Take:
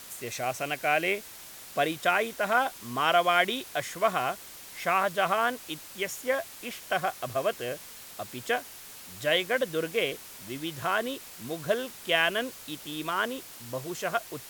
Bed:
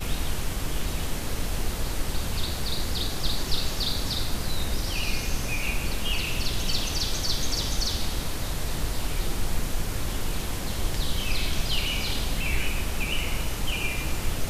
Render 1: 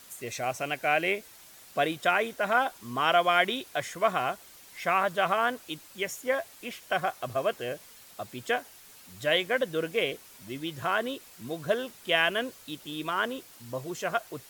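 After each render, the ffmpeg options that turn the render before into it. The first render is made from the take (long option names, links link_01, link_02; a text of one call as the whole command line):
ffmpeg -i in.wav -af "afftdn=noise_reduction=7:noise_floor=-46" out.wav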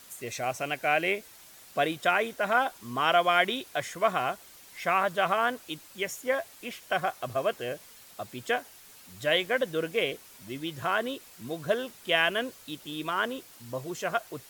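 ffmpeg -i in.wav -filter_complex "[0:a]asettb=1/sr,asplit=3[link_01][link_02][link_03];[link_01]atrim=end=9.284[link_04];[link_02]atrim=start=9.28:end=9.72,asetpts=PTS-STARTPTS,afade=type=in:duration=0.004:curve=qsin,afade=type=out:start_time=0.436:duration=0.004:curve=qsin,aeval=exprs='val(0)*gte(abs(val(0)),0.00376)':channel_layout=same[link_05];[link_03]atrim=start=9.716[link_06];[link_04][link_05]acrossfade=duration=0.004:curve1=hsin:curve2=qsin[link_07];[link_07][link_06]acrossfade=duration=0.004:curve1=qsin:curve2=hsin" out.wav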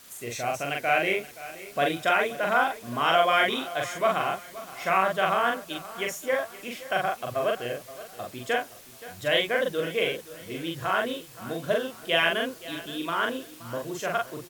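ffmpeg -i in.wav -filter_complex "[0:a]asplit=2[link_01][link_02];[link_02]adelay=42,volume=-2dB[link_03];[link_01][link_03]amix=inputs=2:normalize=0,asplit=2[link_04][link_05];[link_05]adelay=524,lowpass=frequency=4900:poles=1,volume=-16.5dB,asplit=2[link_06][link_07];[link_07]adelay=524,lowpass=frequency=4900:poles=1,volume=0.41,asplit=2[link_08][link_09];[link_09]adelay=524,lowpass=frequency=4900:poles=1,volume=0.41,asplit=2[link_10][link_11];[link_11]adelay=524,lowpass=frequency=4900:poles=1,volume=0.41[link_12];[link_04][link_06][link_08][link_10][link_12]amix=inputs=5:normalize=0" out.wav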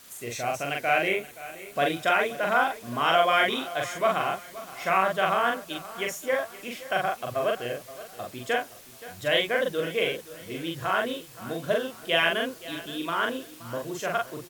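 ffmpeg -i in.wav -filter_complex "[0:a]asettb=1/sr,asplit=3[link_01][link_02][link_03];[link_01]atrim=end=1.084[link_04];[link_02]atrim=start=1.08:end=1.76,asetpts=PTS-STARTPTS,afade=type=in:duration=0.004:curve=qsin,afade=type=out:start_time=0.676:duration=0.004:curve=qsin,equalizer=frequency=5100:width=3.2:gain=-7.5[link_05];[link_03]atrim=start=1.756[link_06];[link_04][link_05]acrossfade=duration=0.004:curve1=hsin:curve2=qsin[link_07];[link_07][link_06]acrossfade=duration=0.004:curve1=qsin:curve2=hsin" out.wav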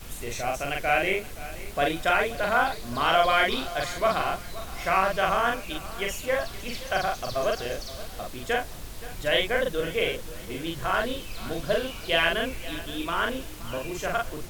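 ffmpeg -i in.wav -i bed.wav -filter_complex "[1:a]volume=-12dB[link_01];[0:a][link_01]amix=inputs=2:normalize=0" out.wav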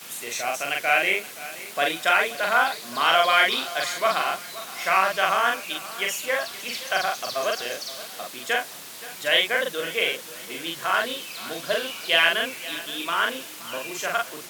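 ffmpeg -i in.wav -af "highpass=frequency=160:width=0.5412,highpass=frequency=160:width=1.3066,tiltshelf=frequency=660:gain=-6.5" out.wav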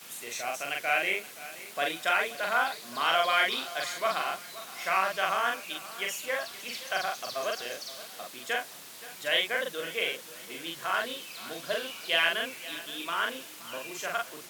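ffmpeg -i in.wav -af "volume=-6.5dB" out.wav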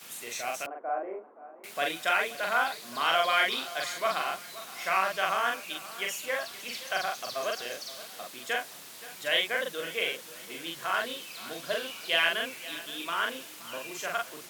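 ffmpeg -i in.wav -filter_complex "[0:a]asettb=1/sr,asplit=3[link_01][link_02][link_03];[link_01]atrim=end=0.664[link_04];[link_02]atrim=start=0.66:end=1.64,asetpts=PTS-STARTPTS,afade=type=in:duration=0.004:curve=qsin,afade=type=out:start_time=0.976:duration=0.004:curve=qsin,asuperpass=centerf=530:order=8:qfactor=0.6[link_05];[link_03]atrim=start=1.636[link_06];[link_04][link_05]acrossfade=duration=0.004:curve1=hsin:curve2=qsin[link_07];[link_07][link_06]acrossfade=duration=0.004:curve1=qsin:curve2=hsin" out.wav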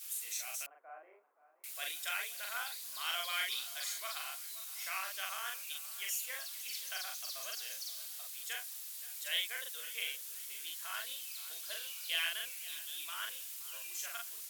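ffmpeg -i in.wav -af "highpass=frequency=300:poles=1,aderivative" out.wav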